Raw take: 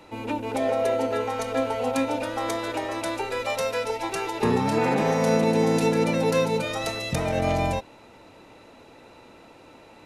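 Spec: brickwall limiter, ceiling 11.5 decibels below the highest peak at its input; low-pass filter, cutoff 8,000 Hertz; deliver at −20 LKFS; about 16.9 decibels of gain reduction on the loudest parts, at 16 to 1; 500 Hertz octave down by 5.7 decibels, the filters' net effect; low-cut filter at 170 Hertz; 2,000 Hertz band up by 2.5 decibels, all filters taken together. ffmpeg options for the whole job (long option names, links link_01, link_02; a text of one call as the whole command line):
ffmpeg -i in.wav -af "highpass=170,lowpass=8000,equalizer=frequency=500:width_type=o:gain=-7,equalizer=frequency=2000:width_type=o:gain=3.5,acompressor=threshold=-38dB:ratio=16,volume=27.5dB,alimiter=limit=-11.5dB:level=0:latency=1" out.wav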